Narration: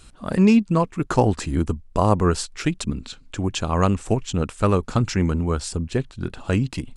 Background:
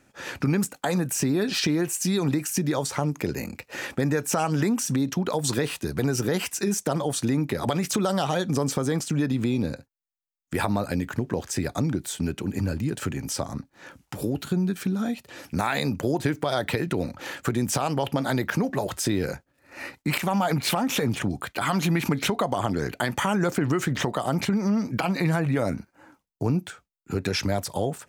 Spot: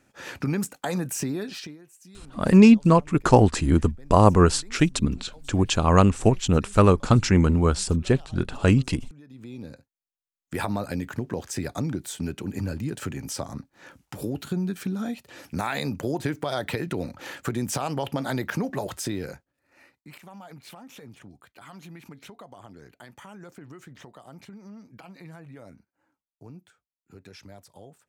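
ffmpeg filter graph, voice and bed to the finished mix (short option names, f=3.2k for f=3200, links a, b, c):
-filter_complex "[0:a]adelay=2150,volume=2.5dB[a];[1:a]volume=19.5dB,afade=t=out:st=1.15:d=0.63:silence=0.0749894,afade=t=in:st=9.26:d=1.35:silence=0.0749894,afade=t=out:st=18.84:d=1.02:silence=0.125893[b];[a][b]amix=inputs=2:normalize=0"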